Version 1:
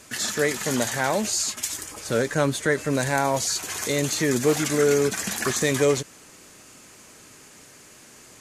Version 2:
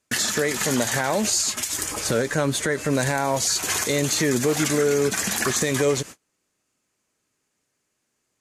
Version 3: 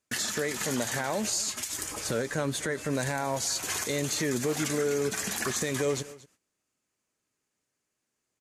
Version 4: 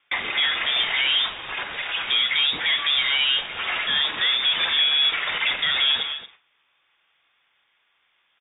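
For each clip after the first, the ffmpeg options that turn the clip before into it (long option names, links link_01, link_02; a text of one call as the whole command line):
ffmpeg -i in.wav -filter_complex "[0:a]asplit=2[link_01][link_02];[link_02]acompressor=threshold=-30dB:ratio=8,volume=2.5dB[link_03];[link_01][link_03]amix=inputs=2:normalize=0,agate=range=-36dB:threshold=-35dB:ratio=16:detection=peak,alimiter=limit=-13.5dB:level=0:latency=1:release=172,volume=2dB" out.wav
ffmpeg -i in.wav -af "aecho=1:1:231:0.106,volume=-7.5dB" out.wav
ffmpeg -i in.wav -filter_complex "[0:a]asplit=2[link_01][link_02];[link_02]highpass=frequency=720:poles=1,volume=24dB,asoftclip=type=tanh:threshold=-18dB[link_03];[link_01][link_03]amix=inputs=2:normalize=0,lowpass=frequency=2700:poles=1,volume=-6dB,asplit=2[link_04][link_05];[link_05]adelay=45,volume=-12.5dB[link_06];[link_04][link_06]amix=inputs=2:normalize=0,lowpass=frequency=3200:width_type=q:width=0.5098,lowpass=frequency=3200:width_type=q:width=0.6013,lowpass=frequency=3200:width_type=q:width=0.9,lowpass=frequency=3200:width_type=q:width=2.563,afreqshift=-3800,volume=4.5dB" out.wav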